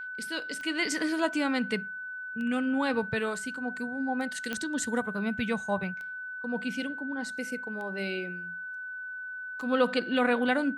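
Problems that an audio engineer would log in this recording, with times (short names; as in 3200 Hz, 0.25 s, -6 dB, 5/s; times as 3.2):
tick 33 1/3 rpm -29 dBFS
tone 1500 Hz -36 dBFS
4.53 pop -17 dBFS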